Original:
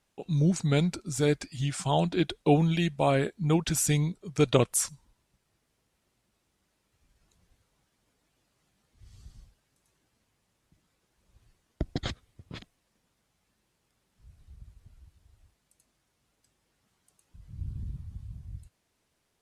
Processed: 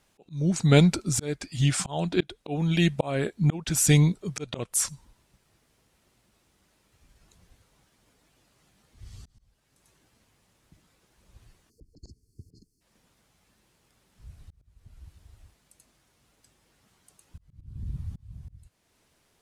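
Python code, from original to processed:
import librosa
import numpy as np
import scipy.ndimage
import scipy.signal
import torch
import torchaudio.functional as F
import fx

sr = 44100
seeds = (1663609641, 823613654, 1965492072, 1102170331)

y = fx.spec_erase(x, sr, start_s=11.7, length_s=1.11, low_hz=460.0, high_hz=4200.0)
y = fx.auto_swell(y, sr, attack_ms=484.0)
y = y * librosa.db_to_amplitude(8.0)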